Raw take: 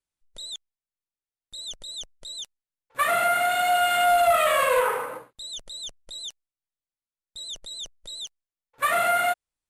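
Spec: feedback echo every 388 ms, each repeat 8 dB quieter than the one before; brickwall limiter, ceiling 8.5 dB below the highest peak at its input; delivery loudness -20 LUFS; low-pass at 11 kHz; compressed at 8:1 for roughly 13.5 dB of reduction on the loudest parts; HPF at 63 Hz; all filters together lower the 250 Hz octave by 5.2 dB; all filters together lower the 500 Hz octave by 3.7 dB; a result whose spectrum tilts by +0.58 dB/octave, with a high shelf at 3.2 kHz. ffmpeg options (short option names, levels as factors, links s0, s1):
-af "highpass=63,lowpass=11000,equalizer=f=250:t=o:g=-5.5,equalizer=f=500:t=o:g=-4.5,highshelf=f=3200:g=-7,acompressor=threshold=0.02:ratio=8,alimiter=level_in=2.82:limit=0.0631:level=0:latency=1,volume=0.355,aecho=1:1:388|776|1164|1552|1940:0.398|0.159|0.0637|0.0255|0.0102,volume=10.6"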